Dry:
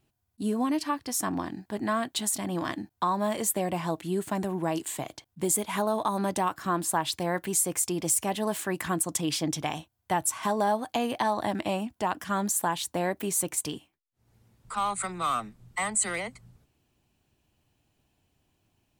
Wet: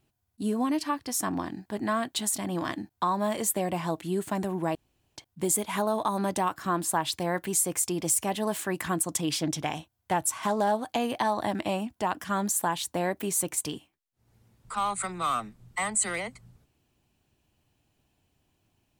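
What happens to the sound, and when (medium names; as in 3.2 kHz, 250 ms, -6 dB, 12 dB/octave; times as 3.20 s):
4.75–5.16 s: room tone
9.40–10.97 s: loudspeaker Doppler distortion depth 0.12 ms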